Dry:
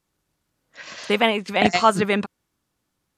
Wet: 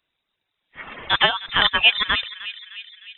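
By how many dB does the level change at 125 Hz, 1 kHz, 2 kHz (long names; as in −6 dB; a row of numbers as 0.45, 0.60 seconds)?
−7.5, −3.5, +5.0 decibels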